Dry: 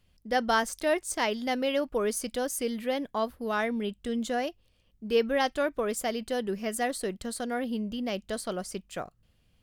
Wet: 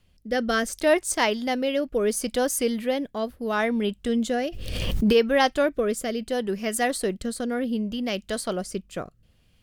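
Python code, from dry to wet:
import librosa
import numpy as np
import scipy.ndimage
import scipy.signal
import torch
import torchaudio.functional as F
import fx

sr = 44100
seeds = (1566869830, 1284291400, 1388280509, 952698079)

y = fx.rotary(x, sr, hz=0.7)
y = fx.pre_swell(y, sr, db_per_s=32.0, at=(4.4, 5.12), fade=0.02)
y = y * 10.0 ** (7.0 / 20.0)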